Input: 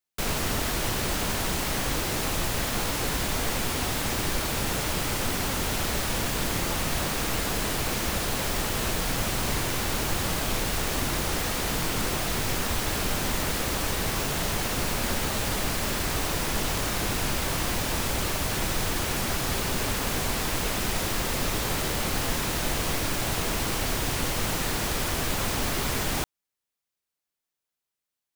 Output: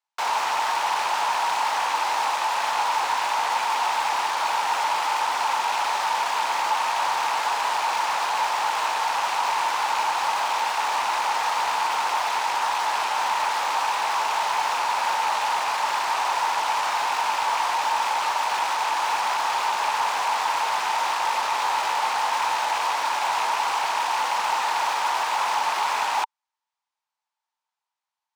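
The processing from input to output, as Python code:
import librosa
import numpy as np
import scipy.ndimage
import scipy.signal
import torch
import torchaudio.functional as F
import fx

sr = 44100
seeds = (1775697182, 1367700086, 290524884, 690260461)

p1 = fx.rattle_buzz(x, sr, strikes_db=-30.0, level_db=-23.0)
p2 = scipy.signal.sosfilt(scipy.signal.butter(2, 6300.0, 'lowpass', fs=sr, output='sos'), p1)
p3 = fx.schmitt(p2, sr, flips_db=-40.0)
p4 = p2 + (p3 * librosa.db_to_amplitude(-11.0))
p5 = fx.highpass_res(p4, sr, hz=900.0, q=7.5)
y = 10.0 ** (-13.0 / 20.0) * np.tanh(p5 / 10.0 ** (-13.0 / 20.0))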